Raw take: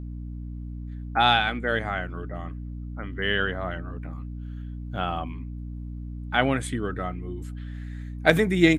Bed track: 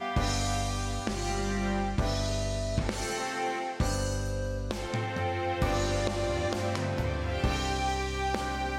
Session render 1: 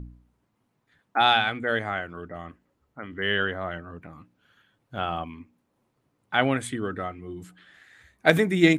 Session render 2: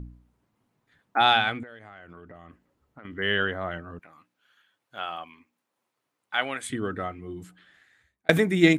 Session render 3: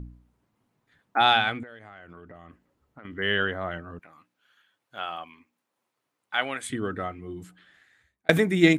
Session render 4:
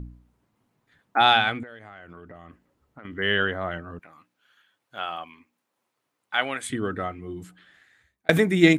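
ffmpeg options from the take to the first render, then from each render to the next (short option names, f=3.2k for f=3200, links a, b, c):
-af "bandreject=f=60:t=h:w=4,bandreject=f=120:t=h:w=4,bandreject=f=180:t=h:w=4,bandreject=f=240:t=h:w=4,bandreject=f=300:t=h:w=4"
-filter_complex "[0:a]asettb=1/sr,asplit=3[a][b][c];[a]atrim=end=1.634[d];[b]atrim=start=1.63:end=3.05,asetpts=PTS-STARTPTS,afade=t=in:d=0.004:c=qsin,afade=t=out:st=1.416:d=0.004:c=qsin,acompressor=threshold=-41dB:ratio=12:attack=3.2:release=140:knee=1:detection=peak[e];[c]atrim=start=3.046[f];[d][e]acrossfade=d=0.004:c1=hsin:c2=qsin[g];[g][f]acrossfade=d=0.004:c1=qsin:c2=hsin,asettb=1/sr,asplit=3[h][i][j];[h]atrim=end=3.994[k];[i]atrim=start=3.99:end=6.7,asetpts=PTS-STARTPTS,afade=t=in:d=0.004:c=qsin,afade=t=out:st=2.706:d=0.004:c=qsin,highpass=f=1.3k:p=1[l];[j]atrim=start=6.696[m];[k][l]acrossfade=d=0.004:c1=hsin:c2=qsin[n];[n][m]acrossfade=d=0.004:c1=qsin:c2=hsin,asplit=2[o][p];[o]atrim=end=8.29,asetpts=PTS-STARTPTS,afade=t=out:st=7.36:d=0.93[q];[p]atrim=start=8.29,asetpts=PTS-STARTPTS,afade=t=in:d=0.004:c=hsin[r];[q][r]concat=n=2:v=0:a=1"
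-af anull
-af "volume=2dB,alimiter=limit=-3dB:level=0:latency=1"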